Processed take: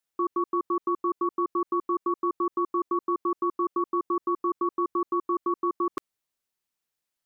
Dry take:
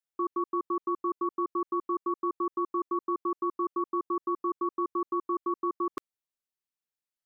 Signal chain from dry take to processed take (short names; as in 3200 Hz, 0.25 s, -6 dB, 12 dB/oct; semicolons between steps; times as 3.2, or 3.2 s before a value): limiter -26.5 dBFS, peak gain reduction 4.5 dB; gain +7.5 dB